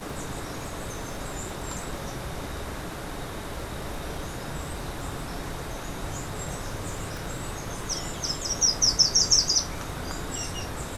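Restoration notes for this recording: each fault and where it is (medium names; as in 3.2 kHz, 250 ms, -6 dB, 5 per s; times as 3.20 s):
crackle 11 per s -34 dBFS
7.17 s: pop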